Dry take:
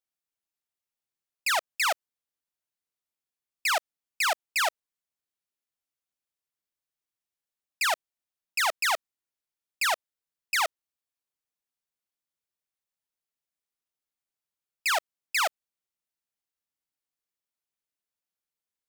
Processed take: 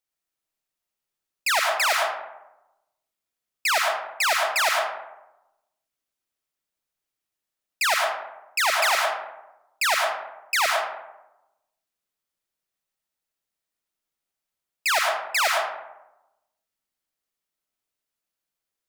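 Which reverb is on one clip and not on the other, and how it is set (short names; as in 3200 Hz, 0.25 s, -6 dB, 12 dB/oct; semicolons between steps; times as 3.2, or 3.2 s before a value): digital reverb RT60 0.97 s, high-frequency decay 0.45×, pre-delay 60 ms, DRR 0 dB; gain +3 dB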